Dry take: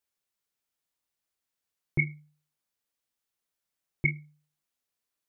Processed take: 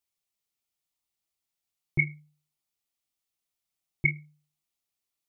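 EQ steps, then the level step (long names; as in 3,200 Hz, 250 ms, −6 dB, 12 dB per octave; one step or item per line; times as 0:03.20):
dynamic equaliser 2,200 Hz, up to +4 dB, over −38 dBFS
thirty-one-band graphic EQ 250 Hz −5 dB, 500 Hz −10 dB, 1,000 Hz −4 dB, 1,600 Hz −11 dB
0.0 dB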